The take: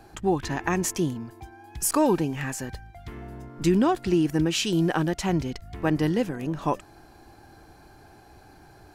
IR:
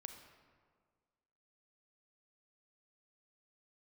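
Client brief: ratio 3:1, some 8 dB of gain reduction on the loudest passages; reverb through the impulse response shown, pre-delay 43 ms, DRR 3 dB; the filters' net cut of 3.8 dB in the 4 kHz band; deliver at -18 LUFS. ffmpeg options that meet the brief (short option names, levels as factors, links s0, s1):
-filter_complex "[0:a]equalizer=f=4000:t=o:g=-5.5,acompressor=threshold=0.0398:ratio=3,asplit=2[s0][s1];[1:a]atrim=start_sample=2205,adelay=43[s2];[s1][s2]afir=irnorm=-1:irlink=0,volume=1.26[s3];[s0][s3]amix=inputs=2:normalize=0,volume=4.22"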